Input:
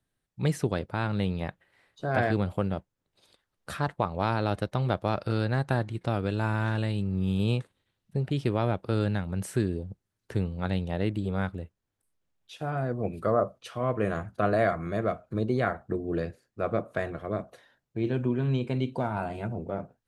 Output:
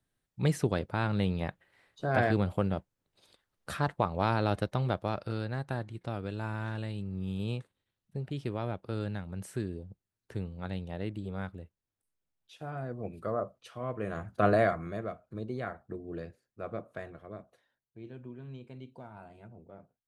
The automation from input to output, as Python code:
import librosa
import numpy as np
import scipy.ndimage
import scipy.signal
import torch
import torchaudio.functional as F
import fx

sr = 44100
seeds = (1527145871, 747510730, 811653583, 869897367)

y = fx.gain(x, sr, db=fx.line((4.6, -1.0), (5.48, -8.0), (14.06, -8.0), (14.48, 1.5), (15.11, -10.0), (16.85, -10.0), (18.07, -18.0)))